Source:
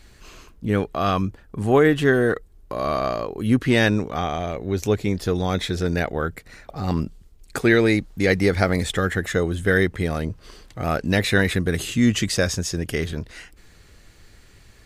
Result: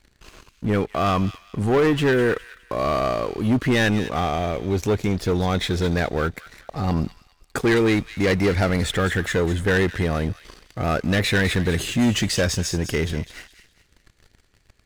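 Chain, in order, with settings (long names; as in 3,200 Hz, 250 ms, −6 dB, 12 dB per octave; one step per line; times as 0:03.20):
high-shelf EQ 5,900 Hz −5 dB
leveller curve on the samples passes 3
delay with a high-pass on its return 205 ms, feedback 33%, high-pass 2,100 Hz, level −10 dB
level −8 dB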